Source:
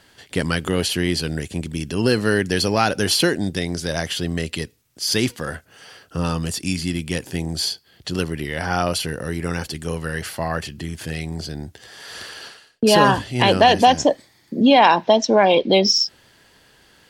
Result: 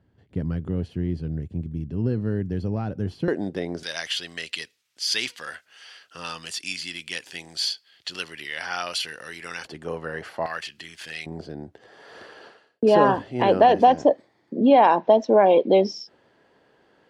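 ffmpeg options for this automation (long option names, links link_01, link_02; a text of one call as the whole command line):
ffmpeg -i in.wav -af "asetnsamples=nb_out_samples=441:pad=0,asendcmd='3.28 bandpass f 540;3.83 bandpass f 3000;9.65 bandpass f 720;10.46 bandpass f 2700;11.26 bandpass f 490',bandpass=frequency=100:width_type=q:width=0.81:csg=0" out.wav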